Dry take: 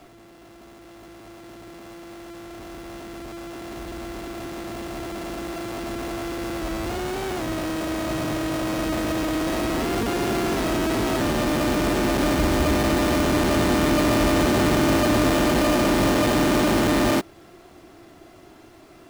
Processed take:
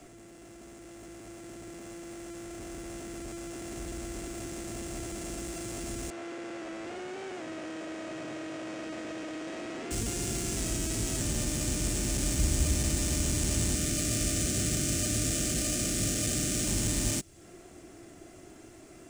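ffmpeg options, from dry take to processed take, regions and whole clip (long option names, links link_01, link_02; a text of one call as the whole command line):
ffmpeg -i in.wav -filter_complex "[0:a]asettb=1/sr,asplit=3[link_01][link_02][link_03];[link_01]atrim=end=6.104[link_04];[link_02]atrim=start=6.1:end=9.91,asetpts=PTS-STARTPTS,afade=type=in:duration=0.004:curve=qsin,afade=type=out:start_time=3.806:duration=0.004:curve=qsin,bass=frequency=250:gain=-13,treble=frequency=4000:gain=-15,aeval=exprs='val(0)*gte(abs(val(0)),0.00891)':channel_layout=same,highpass=150,lowpass=5500[link_05];[link_03]atrim=start=9.906[link_06];[link_04][link_05]acrossfade=duration=0.004:curve1=hsin:curve2=qsin[link_07];[link_07][link_06]acrossfade=duration=0.004:curve1=qsin:curve2=hsin,asettb=1/sr,asplit=3[link_08][link_09][link_10];[link_08]atrim=end=13.754[link_11];[link_09]atrim=start=13.75:end=16.65,asetpts=PTS-STARTPTS,afade=type=in:duration=0.004:curve=qsin,afade=type=out:start_time=2.896:duration=0.004:curve=qsin,asuperstop=centerf=960:order=20:qfactor=2.9,lowshelf=frequency=61:gain=-9.5[link_12];[link_10]atrim=start=16.646[link_13];[link_11][link_12]acrossfade=duration=0.004:curve1=hsin:curve2=qsin[link_14];[link_14][link_13]acrossfade=duration=0.004:curve1=qsin:curve2=hsin,equalizer=frequency=1000:width_type=o:width=1:gain=-8,equalizer=frequency=4000:width_type=o:width=1:gain=-8,equalizer=frequency=8000:width_type=o:width=1:gain=11,equalizer=frequency=16000:width_type=o:width=1:gain=-11,acrossover=split=150|3000[link_15][link_16][link_17];[link_16]acompressor=threshold=-37dB:ratio=5[link_18];[link_15][link_18][link_17]amix=inputs=3:normalize=0,equalizer=frequency=7600:width=0.54:gain=3.5,volume=-1.5dB" out.wav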